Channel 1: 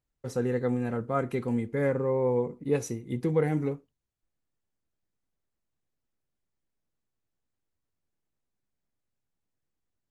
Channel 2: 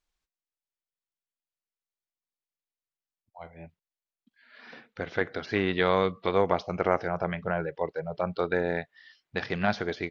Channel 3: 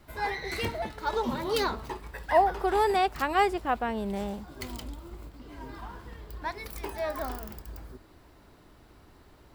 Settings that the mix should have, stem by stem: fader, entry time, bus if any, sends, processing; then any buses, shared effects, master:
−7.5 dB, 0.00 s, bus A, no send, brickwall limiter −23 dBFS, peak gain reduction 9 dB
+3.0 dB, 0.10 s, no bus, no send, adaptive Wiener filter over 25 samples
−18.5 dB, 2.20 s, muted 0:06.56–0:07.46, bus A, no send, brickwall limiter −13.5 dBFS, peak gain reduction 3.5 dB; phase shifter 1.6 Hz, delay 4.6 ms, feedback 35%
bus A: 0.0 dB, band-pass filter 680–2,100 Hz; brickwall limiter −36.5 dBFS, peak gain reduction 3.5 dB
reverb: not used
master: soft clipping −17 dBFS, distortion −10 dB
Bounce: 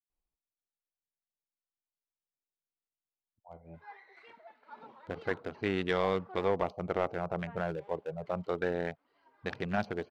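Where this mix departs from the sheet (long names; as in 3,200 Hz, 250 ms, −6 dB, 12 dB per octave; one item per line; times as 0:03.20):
stem 1: muted
stem 2 +3.0 dB → −4.0 dB
stem 3: entry 2.20 s → 3.65 s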